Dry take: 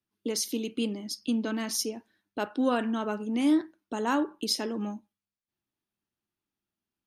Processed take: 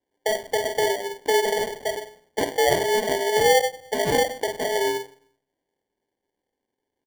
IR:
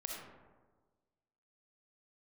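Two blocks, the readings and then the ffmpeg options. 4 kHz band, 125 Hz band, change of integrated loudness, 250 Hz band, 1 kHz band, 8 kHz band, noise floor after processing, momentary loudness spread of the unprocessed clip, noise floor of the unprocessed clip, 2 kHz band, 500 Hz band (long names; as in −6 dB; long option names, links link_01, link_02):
+6.5 dB, can't be measured, +6.5 dB, −8.0 dB, +10.5 dB, +5.0 dB, −84 dBFS, 10 LU, below −85 dBFS, +12.5 dB, +12.5 dB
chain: -filter_complex "[0:a]equalizer=frequency=1100:width=3.5:gain=-12,asplit=2[link_01][link_02];[link_02]acompressor=threshold=-34dB:ratio=6,volume=-2dB[link_03];[link_01][link_03]amix=inputs=2:normalize=0,lowpass=frequency=3100:width_type=q:width=0.5098,lowpass=frequency=3100:width_type=q:width=0.6013,lowpass=frequency=3100:width_type=q:width=0.9,lowpass=frequency=3100:width_type=q:width=2.563,afreqshift=-3700,asplit=2[link_04][link_05];[link_05]adelay=47,volume=-9.5dB[link_06];[link_04][link_06]amix=inputs=2:normalize=0,asplit=2[link_07][link_08];[1:a]atrim=start_sample=2205,asetrate=57330,aresample=44100[link_09];[link_08][link_09]afir=irnorm=-1:irlink=0,volume=-2.5dB[link_10];[link_07][link_10]amix=inputs=2:normalize=0,acrusher=samples=34:mix=1:aa=0.000001,volume=1.5dB"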